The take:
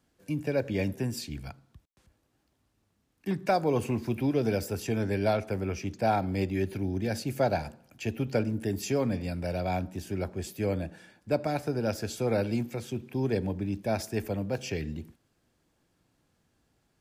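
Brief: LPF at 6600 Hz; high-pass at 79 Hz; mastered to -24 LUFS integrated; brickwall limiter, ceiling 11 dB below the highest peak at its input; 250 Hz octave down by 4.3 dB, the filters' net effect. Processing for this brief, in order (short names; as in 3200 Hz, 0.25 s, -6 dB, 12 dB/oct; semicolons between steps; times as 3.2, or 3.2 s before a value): HPF 79 Hz; LPF 6600 Hz; bell 250 Hz -5.5 dB; gain +12 dB; limiter -13 dBFS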